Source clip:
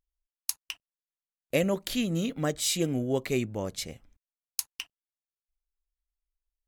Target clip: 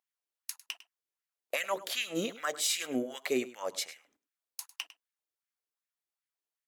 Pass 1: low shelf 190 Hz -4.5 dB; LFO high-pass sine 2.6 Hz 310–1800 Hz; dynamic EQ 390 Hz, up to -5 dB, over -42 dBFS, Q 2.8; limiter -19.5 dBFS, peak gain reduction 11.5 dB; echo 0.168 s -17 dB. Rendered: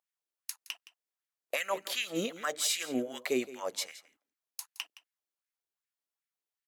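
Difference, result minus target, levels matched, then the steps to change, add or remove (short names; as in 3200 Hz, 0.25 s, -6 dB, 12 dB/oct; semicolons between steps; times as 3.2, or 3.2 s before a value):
echo 66 ms late
change: echo 0.102 s -17 dB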